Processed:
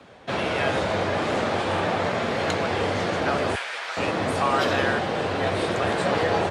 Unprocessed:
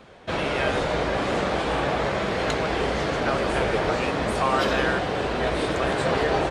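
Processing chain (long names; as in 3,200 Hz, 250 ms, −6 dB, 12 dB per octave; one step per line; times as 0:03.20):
0:03.55–0:03.97: high-pass filter 1,400 Hz 12 dB per octave
frequency shifter +37 Hz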